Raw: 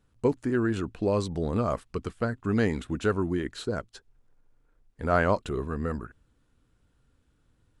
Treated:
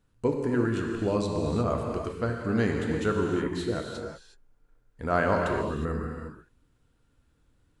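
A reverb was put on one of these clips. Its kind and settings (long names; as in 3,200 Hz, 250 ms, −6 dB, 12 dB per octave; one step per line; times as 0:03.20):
reverb whose tail is shaped and stops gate 390 ms flat, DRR 0.5 dB
level −2 dB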